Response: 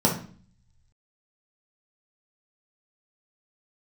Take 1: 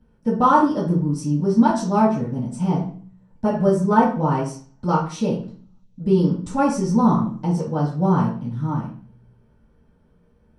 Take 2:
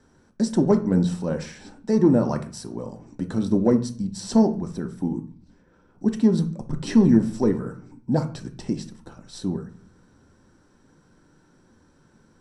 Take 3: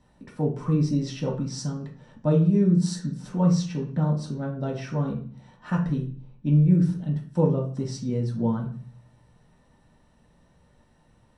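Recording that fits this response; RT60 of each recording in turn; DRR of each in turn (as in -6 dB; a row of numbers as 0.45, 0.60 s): 3; 0.45, 0.45, 0.45 s; -11.5, 5.5, -3.0 dB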